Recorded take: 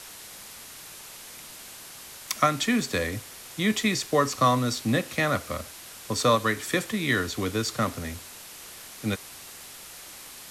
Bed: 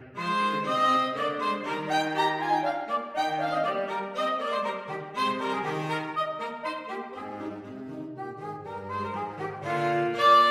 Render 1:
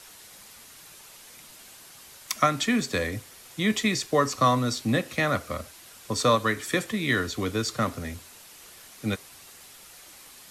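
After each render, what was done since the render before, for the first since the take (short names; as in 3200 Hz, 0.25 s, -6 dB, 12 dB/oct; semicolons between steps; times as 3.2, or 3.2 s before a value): denoiser 6 dB, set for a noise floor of -44 dBFS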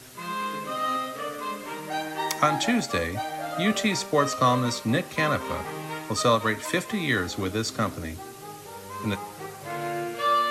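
add bed -4.5 dB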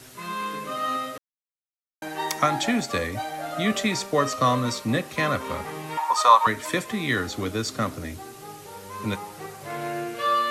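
1.18–2.02 mute; 5.97–6.47 resonant high-pass 900 Hz, resonance Q 9.6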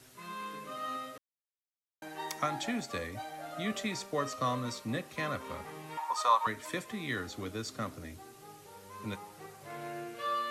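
gain -11 dB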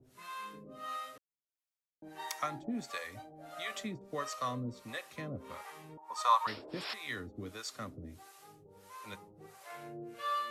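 6.47–6.94 painted sound noise 270–5600 Hz -37 dBFS; harmonic tremolo 1.5 Hz, depth 100%, crossover 550 Hz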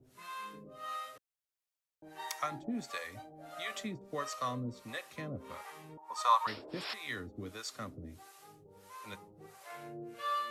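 0.69–2.52 bell 230 Hz -15 dB 0.45 oct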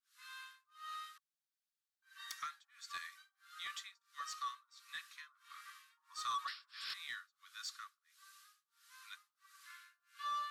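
rippled Chebyshev high-pass 1100 Hz, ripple 6 dB; soft clip -34.5 dBFS, distortion -11 dB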